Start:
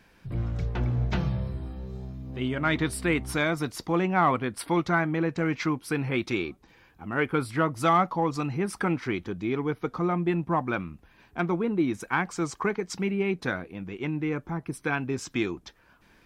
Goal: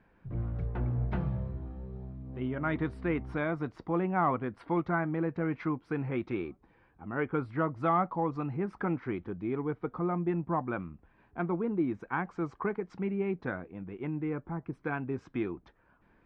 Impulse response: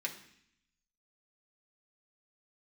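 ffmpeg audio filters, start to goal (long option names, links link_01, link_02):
-af "lowpass=1500,volume=-4.5dB"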